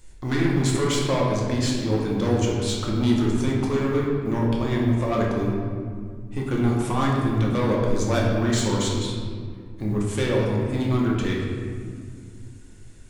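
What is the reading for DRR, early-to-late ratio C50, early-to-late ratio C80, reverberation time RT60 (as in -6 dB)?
-3.5 dB, 0.5 dB, 2.5 dB, 2.1 s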